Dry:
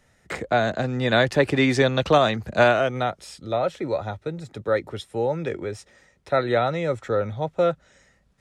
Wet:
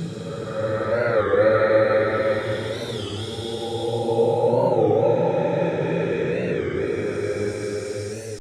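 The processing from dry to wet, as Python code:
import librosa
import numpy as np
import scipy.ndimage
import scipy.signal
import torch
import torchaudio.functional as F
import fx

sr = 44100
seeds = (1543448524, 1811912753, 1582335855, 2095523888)

y = fx.paulstretch(x, sr, seeds[0], factor=6.1, window_s=0.5, from_s=4.47)
y = fx.record_warp(y, sr, rpm=33.33, depth_cents=160.0)
y = F.gain(torch.from_numpy(y), 5.0).numpy()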